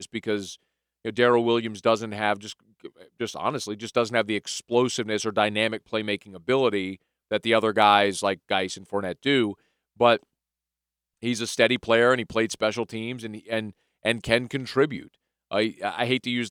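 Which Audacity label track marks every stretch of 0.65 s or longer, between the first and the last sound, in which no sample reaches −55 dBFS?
10.230000	11.220000	silence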